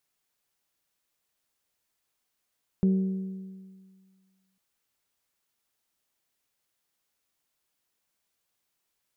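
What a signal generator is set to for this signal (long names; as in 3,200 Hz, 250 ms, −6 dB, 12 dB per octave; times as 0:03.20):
struck metal bell, length 1.75 s, lowest mode 190 Hz, decay 1.82 s, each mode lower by 11.5 dB, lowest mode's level −18 dB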